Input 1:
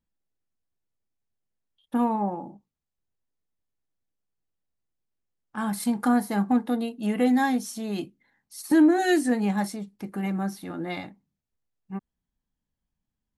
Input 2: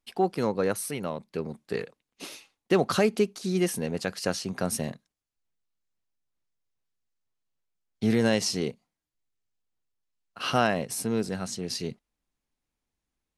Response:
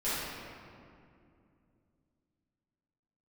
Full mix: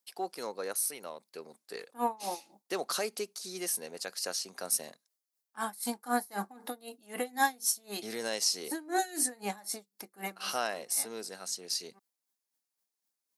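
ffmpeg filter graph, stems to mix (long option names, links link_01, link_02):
-filter_complex "[0:a]aeval=exprs='val(0)*pow(10,-25*(0.5-0.5*cos(2*PI*3.9*n/s))/20)':channel_layout=same,volume=0.5dB[link_01];[1:a]volume=-8dB,asplit=2[link_02][link_03];[link_03]apad=whole_len=589642[link_04];[link_01][link_04]sidechaincompress=threshold=-42dB:ratio=8:attack=27:release=336[link_05];[link_05][link_02]amix=inputs=2:normalize=0,highpass=470,aexciter=amount=3.9:drive=1.8:freq=4200"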